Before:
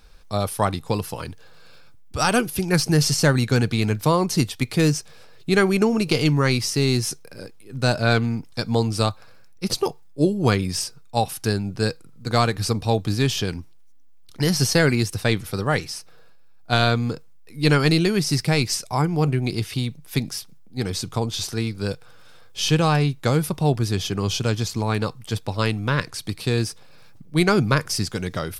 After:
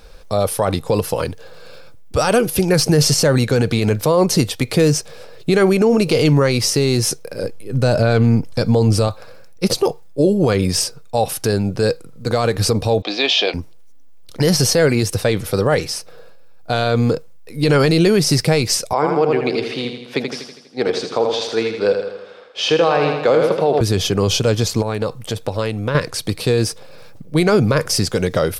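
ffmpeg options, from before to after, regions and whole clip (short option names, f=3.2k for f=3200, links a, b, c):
-filter_complex "[0:a]asettb=1/sr,asplit=3[a][b][c];[a]atrim=end=7.434[d];[b]atrim=start=7.43:end=9.08,asetpts=PTS-STARTPTS,afade=t=in:d=0.004:c=qsin,afade=t=out:st=1.646:d=0.004:c=qsin,lowshelf=f=190:g=8,bandreject=f=3.7k:w=20[e];[c]atrim=start=9.076[f];[d][e]acrossfade=d=0.004:c1=hsin:c2=qsin[g];[g][f]acrossfade=d=0.004:c1=qsin:c2=hsin,asettb=1/sr,asplit=3[h][i][j];[h]atrim=end=13.024[k];[i]atrim=start=13.02:end=13.54,asetpts=PTS-STARTPTS,afade=t=in:d=0.004:c=qsin,afade=t=out:st=0.516:d=0.004:c=qsin,highpass=f=350:w=0.5412,highpass=f=350:w=1.3066,equalizer=f=430:t=q:w=4:g=-8,equalizer=f=700:t=q:w=4:g=8,equalizer=f=1.5k:t=q:w=4:g=-5,equalizer=f=2.4k:t=q:w=4:g=7,equalizer=f=3.6k:t=q:w=4:g=8,lowpass=f=4.9k:w=0.5412,lowpass=f=4.9k:w=1.3066,asplit=2[l][m];[m]adelay=19,volume=-12.5dB[n];[l][n]amix=inputs=2:normalize=0,atrim=end_sample=22932[o];[j]atrim=start=13.536[p];[k][o]acrossfade=d=0.004:c1=hsin:c2=qsin[q];[q][p]acrossfade=d=0.004:c1=qsin:c2=hsin,asettb=1/sr,asplit=3[r][s][t];[r]atrim=end=18.934[u];[s]atrim=start=18.93:end=23.81,asetpts=PTS-STARTPTS,afade=t=in:d=0.004:c=qsin,afade=t=out:st=4.876:d=0.004:c=qsin,highpass=350,lowpass=3.5k,aecho=1:1:81|162|243|324|405|486|567:0.447|0.246|0.135|0.0743|0.0409|0.0225|0.0124,atrim=end_sample=215208[v];[t]atrim=start=23.806[w];[u][v]acrossfade=d=0.004:c1=hsin:c2=qsin[x];[x][w]acrossfade=d=0.004:c1=qsin:c2=hsin,asettb=1/sr,asplit=3[y][z][aa];[y]atrim=end=24.824[ab];[z]atrim=start=24.82:end=25.95,asetpts=PTS-STARTPTS,afade=t=in:d=0.004:c=qsin,afade=t=out:st=1.126:d=0.004:c=qsin,equalizer=f=4.9k:t=o:w=0.24:g=-3,acompressor=threshold=-28dB:ratio=4:attack=3.2:release=140:knee=1:detection=peak[ac];[aa]atrim=start=25.946[ad];[ab][ac]acrossfade=d=0.004:c1=hsin:c2=qsin[ae];[ae][ad]acrossfade=d=0.004:c1=qsin:c2=hsin,equalizer=f=520:w=2:g=10,alimiter=level_in=12.5dB:limit=-1dB:release=50:level=0:latency=1,volume=-5dB"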